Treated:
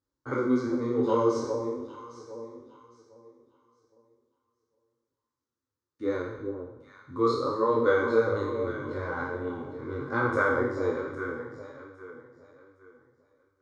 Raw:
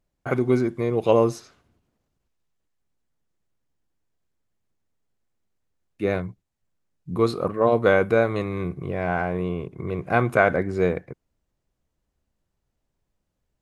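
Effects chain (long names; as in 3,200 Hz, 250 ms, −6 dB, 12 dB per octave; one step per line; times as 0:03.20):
peak hold with a decay on every bin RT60 0.94 s
loudspeaker in its box 100–6,400 Hz, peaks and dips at 250 Hz +7 dB, 390 Hz −7 dB, 630 Hz −4 dB, 1,700 Hz −5 dB
phaser with its sweep stopped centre 700 Hz, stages 6
on a send: delay that swaps between a low-pass and a high-pass 404 ms, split 940 Hz, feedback 52%, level −6 dB
on the sum: micro pitch shift up and down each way 27 cents
level +1 dB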